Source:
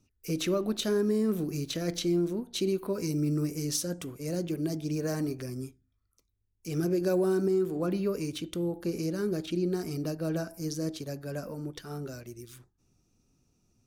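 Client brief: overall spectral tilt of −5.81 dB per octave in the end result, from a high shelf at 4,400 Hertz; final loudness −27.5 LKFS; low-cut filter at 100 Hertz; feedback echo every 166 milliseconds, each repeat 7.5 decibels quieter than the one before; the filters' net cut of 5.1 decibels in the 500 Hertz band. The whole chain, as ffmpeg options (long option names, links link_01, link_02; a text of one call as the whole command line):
ffmpeg -i in.wav -af "highpass=100,equalizer=frequency=500:width_type=o:gain=-7.5,highshelf=frequency=4400:gain=-5.5,aecho=1:1:166|332|498|664|830:0.422|0.177|0.0744|0.0312|0.0131,volume=6dB" out.wav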